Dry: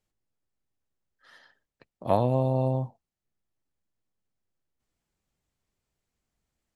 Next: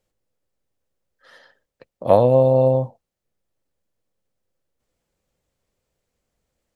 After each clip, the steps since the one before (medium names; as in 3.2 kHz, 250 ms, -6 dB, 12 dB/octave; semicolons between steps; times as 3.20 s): peaking EQ 520 Hz +10.5 dB 0.45 oct; trim +5 dB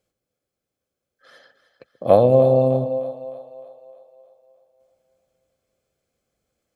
comb of notches 940 Hz; two-band feedback delay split 530 Hz, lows 134 ms, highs 306 ms, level -12.5 dB; trim +1 dB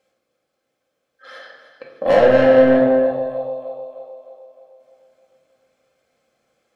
overdrive pedal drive 25 dB, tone 2.5 kHz, clips at -1 dBFS; reverberation RT60 1.0 s, pre-delay 4 ms, DRR -1.5 dB; trim -8 dB